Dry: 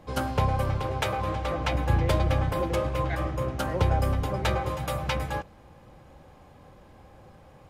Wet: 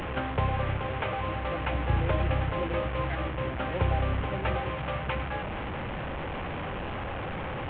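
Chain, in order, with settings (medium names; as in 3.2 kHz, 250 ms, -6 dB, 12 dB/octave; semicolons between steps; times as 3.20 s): one-bit delta coder 16 kbps, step -25 dBFS; trim -3 dB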